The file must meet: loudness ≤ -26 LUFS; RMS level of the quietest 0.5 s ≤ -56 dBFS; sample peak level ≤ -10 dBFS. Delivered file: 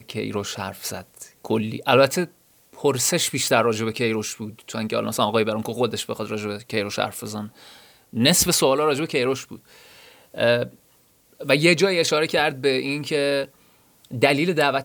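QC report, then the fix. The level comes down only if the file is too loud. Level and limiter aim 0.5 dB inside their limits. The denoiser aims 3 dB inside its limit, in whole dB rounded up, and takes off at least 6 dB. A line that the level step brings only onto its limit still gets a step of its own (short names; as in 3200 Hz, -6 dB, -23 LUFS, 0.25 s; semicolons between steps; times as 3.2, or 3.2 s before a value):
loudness -22.0 LUFS: fail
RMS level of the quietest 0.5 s -59 dBFS: OK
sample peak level -4.0 dBFS: fail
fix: gain -4.5 dB; limiter -10.5 dBFS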